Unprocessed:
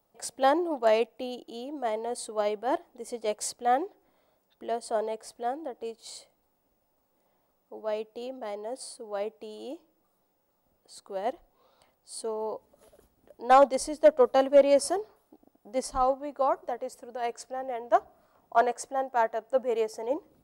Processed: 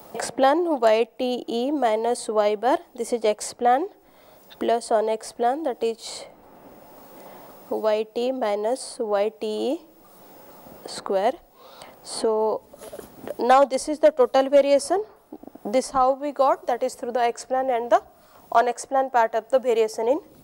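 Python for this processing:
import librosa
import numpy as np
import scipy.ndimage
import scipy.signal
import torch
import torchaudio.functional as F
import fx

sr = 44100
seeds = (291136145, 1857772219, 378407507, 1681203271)

y = fx.band_squash(x, sr, depth_pct=70)
y = y * librosa.db_to_amplitude(7.5)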